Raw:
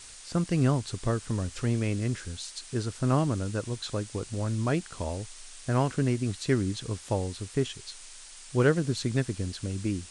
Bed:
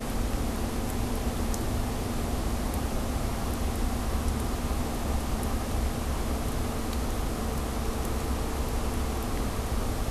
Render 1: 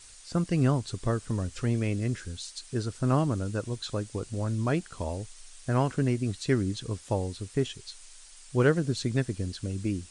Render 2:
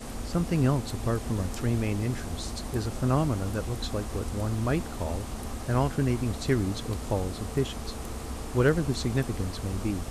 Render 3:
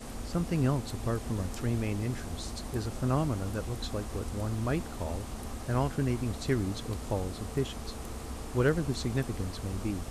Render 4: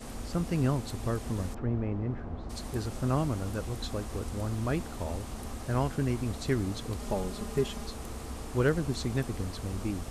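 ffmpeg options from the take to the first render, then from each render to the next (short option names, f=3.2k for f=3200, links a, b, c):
-af "afftdn=nr=6:nf=-47"
-filter_complex "[1:a]volume=-6.5dB[a];[0:a][a]amix=inputs=2:normalize=0"
-af "volume=-3.5dB"
-filter_complex "[0:a]asplit=3[a][b][c];[a]afade=t=out:st=1.53:d=0.02[d];[b]lowpass=1.3k,afade=t=in:st=1.53:d=0.02,afade=t=out:st=2.49:d=0.02[e];[c]afade=t=in:st=2.49:d=0.02[f];[d][e][f]amix=inputs=3:normalize=0,asettb=1/sr,asplit=3[g][h][i];[g]atrim=end=6.994[j];[h]atrim=start=6.99:end=7.86,asetpts=PTS-STARTPTS,afade=t=in:d=0.004:c=qsin,afade=t=out:st=0.866:d=0.004:c=qsin,aecho=1:1:4.9:0.65,atrim=end_sample=38367[k];[i]atrim=start=7.856[l];[j][k]acrossfade=d=0.004:c1=hsin:c2=qsin[m];[m][l]acrossfade=d=0.004:c1=qsin:c2=hsin"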